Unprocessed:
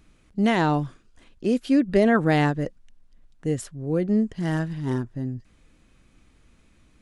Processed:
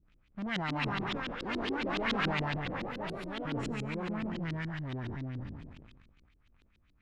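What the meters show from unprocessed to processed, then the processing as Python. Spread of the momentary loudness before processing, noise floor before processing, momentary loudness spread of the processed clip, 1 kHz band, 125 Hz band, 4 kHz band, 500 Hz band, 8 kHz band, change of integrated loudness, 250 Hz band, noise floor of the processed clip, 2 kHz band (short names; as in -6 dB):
14 LU, -59 dBFS, 10 LU, -8.0 dB, -10.0 dB, -0.5 dB, -13.5 dB, -12.5 dB, -11.5 dB, -13.5 dB, -68 dBFS, -5.0 dB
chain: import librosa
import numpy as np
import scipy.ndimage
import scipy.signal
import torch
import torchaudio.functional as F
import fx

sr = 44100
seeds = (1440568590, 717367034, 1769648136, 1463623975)

y = fx.spec_trails(x, sr, decay_s=1.44)
y = fx.low_shelf(y, sr, hz=220.0, db=4.5)
y = fx.leveller(y, sr, passes=2)
y = 10.0 ** (-19.0 / 20.0) * np.tanh(y / 10.0 ** (-19.0 / 20.0))
y = fx.echo_pitch(y, sr, ms=400, semitones=5, count=3, db_per_echo=-3.0)
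y = fx.tone_stack(y, sr, knobs='5-5-5')
y = fx.filter_lfo_lowpass(y, sr, shape='saw_up', hz=7.1, low_hz=270.0, high_hz=4100.0, q=1.9)
y = fx.sustainer(y, sr, db_per_s=34.0)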